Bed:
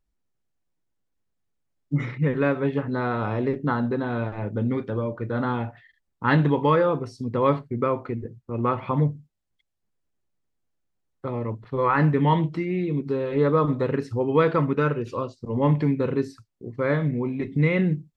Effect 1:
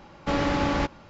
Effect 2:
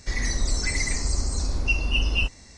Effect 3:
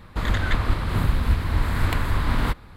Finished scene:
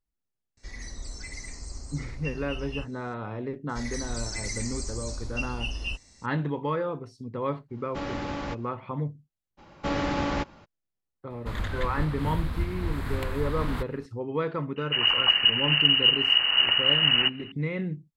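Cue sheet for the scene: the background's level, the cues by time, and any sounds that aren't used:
bed -9 dB
0.57 add 2 -14 dB
3.69 add 2 -10.5 dB + high shelf 4600 Hz +7.5 dB
7.68 add 1 -8.5 dB, fades 0.10 s
9.57 add 1 -3 dB, fades 0.02 s
11.3 add 3 -8.5 dB
14.76 add 3 -3 dB + inverted band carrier 2900 Hz

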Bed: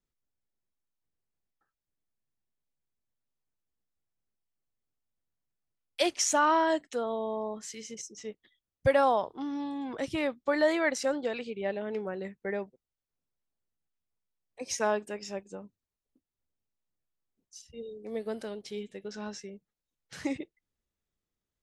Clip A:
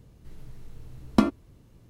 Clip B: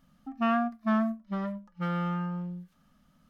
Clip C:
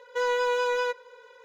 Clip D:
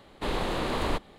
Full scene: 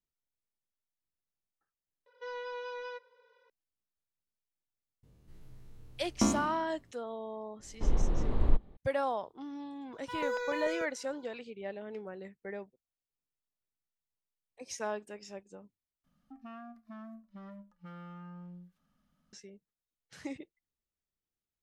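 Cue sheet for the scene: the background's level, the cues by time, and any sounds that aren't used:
bed -8 dB
2.06 replace with C -15 dB + steep low-pass 6000 Hz 96 dB/oct
5.03 add A -11 dB + spectral trails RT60 0.80 s
7.59 add D -14 dB + tilt -4.5 dB/oct
9.93 add C -6.5 dB + step phaser 6.8 Hz 560–3900 Hz
16.04 replace with B -11 dB + compressor 5:1, threshold -33 dBFS

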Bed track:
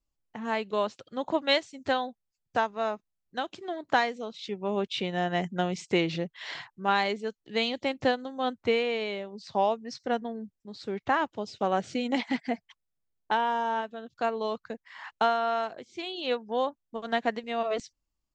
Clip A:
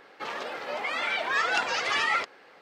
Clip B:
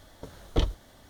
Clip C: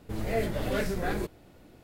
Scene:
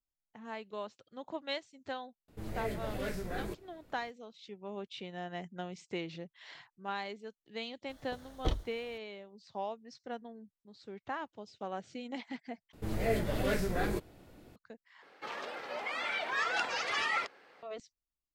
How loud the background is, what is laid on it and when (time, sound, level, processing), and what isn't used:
bed track -13 dB
2.28 add C -8 dB
7.89 add B -7 dB
12.73 replace with C -2 dB
15.02 replace with A -6.5 dB

